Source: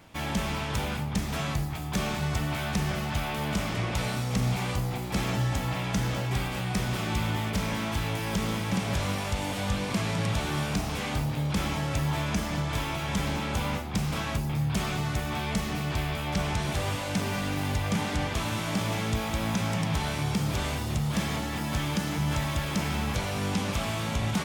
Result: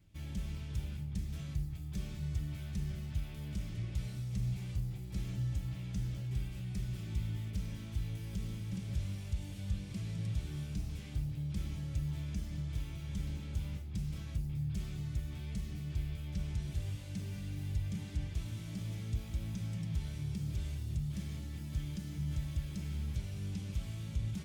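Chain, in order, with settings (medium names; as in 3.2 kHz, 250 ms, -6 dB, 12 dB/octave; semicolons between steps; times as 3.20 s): amplifier tone stack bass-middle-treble 10-0-1; comb of notches 240 Hz; trim +4.5 dB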